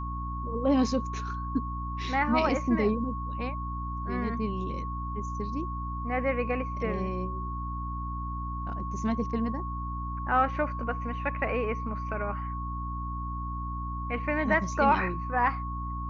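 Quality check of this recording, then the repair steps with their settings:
hum 60 Hz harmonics 5 -35 dBFS
whine 1.1 kHz -36 dBFS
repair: band-stop 1.1 kHz, Q 30; de-hum 60 Hz, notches 5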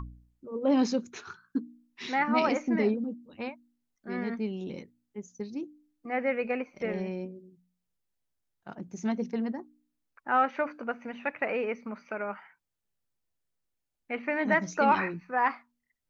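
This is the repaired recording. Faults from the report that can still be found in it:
nothing left

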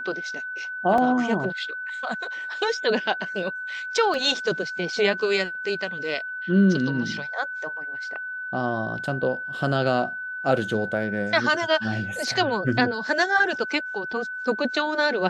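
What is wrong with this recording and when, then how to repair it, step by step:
whine 1.5 kHz -30 dBFS
0.98 s: dropout 2.6 ms
4.14 s: dropout 2 ms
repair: band-stop 1.5 kHz, Q 30; interpolate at 0.98 s, 2.6 ms; interpolate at 4.14 s, 2 ms

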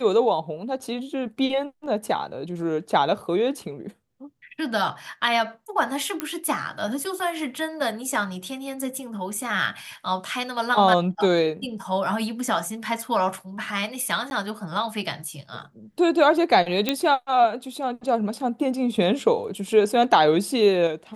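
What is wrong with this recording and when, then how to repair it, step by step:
6.20 s: pop -10 dBFS
14.30–14.31 s: dropout 11 ms
16.89 s: pop -6 dBFS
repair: de-click; interpolate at 14.30 s, 11 ms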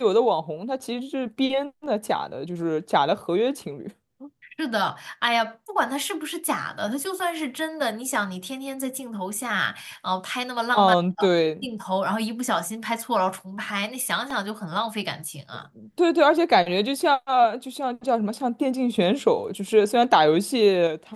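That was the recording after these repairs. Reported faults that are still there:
nothing left

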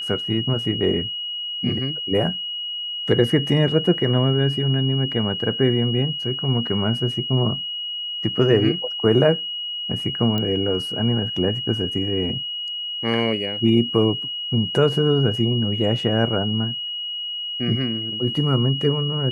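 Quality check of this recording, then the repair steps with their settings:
whine 2.9 kHz -26 dBFS
10.38 s: pop -12 dBFS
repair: de-click; band-stop 2.9 kHz, Q 30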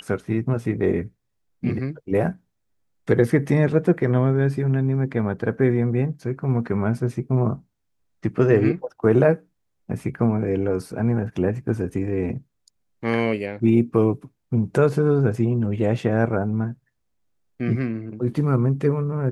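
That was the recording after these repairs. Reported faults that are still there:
nothing left

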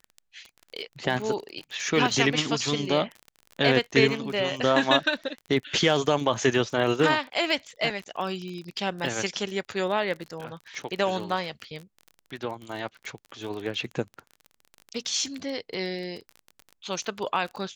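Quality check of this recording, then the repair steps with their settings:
crackle 31 per s -33 dBFS
7.90 s: dropout 2.3 ms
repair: de-click; interpolate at 7.90 s, 2.3 ms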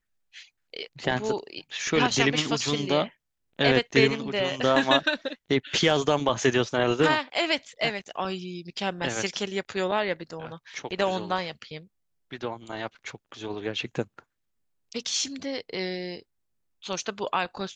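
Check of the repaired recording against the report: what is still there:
nothing left

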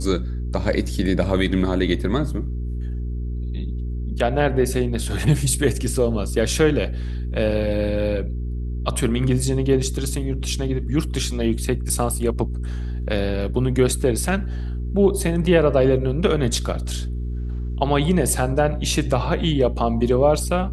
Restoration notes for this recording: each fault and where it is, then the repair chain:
hum 60 Hz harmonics 7 -26 dBFS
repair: de-hum 60 Hz, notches 7

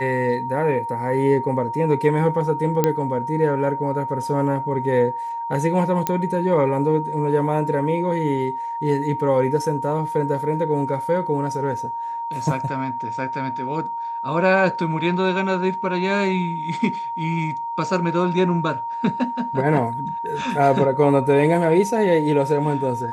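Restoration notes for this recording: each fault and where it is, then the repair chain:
whine 930 Hz -25 dBFS
2.84 s: pop -4 dBFS
6.07 s: pop -6 dBFS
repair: de-click; band-stop 930 Hz, Q 30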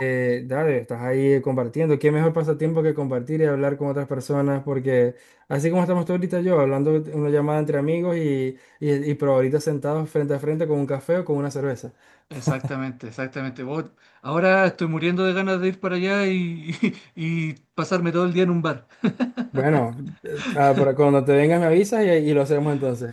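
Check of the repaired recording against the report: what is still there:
nothing left

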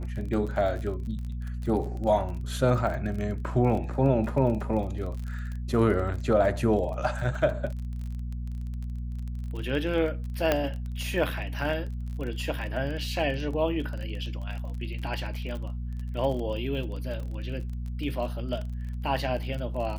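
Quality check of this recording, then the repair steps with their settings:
crackle 30 per s -34 dBFS
hum 60 Hz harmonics 4 -33 dBFS
10.52 s: pop -9 dBFS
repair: de-click; de-hum 60 Hz, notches 4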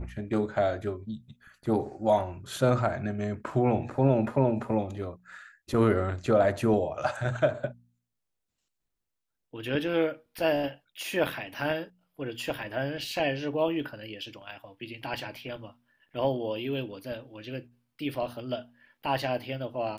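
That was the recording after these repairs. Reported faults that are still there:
10.52 s: pop

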